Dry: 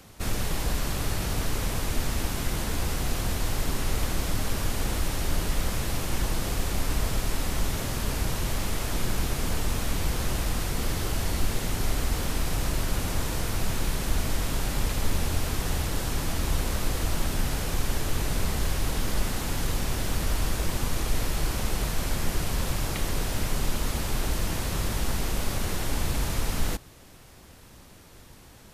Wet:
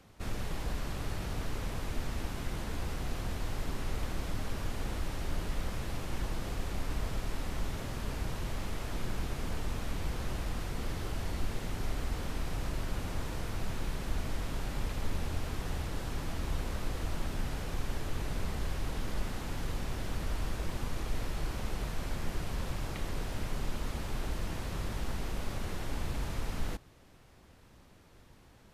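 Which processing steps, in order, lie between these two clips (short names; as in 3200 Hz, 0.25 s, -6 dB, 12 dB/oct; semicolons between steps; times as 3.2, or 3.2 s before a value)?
high shelf 5200 Hz -10.5 dB; gain -7.5 dB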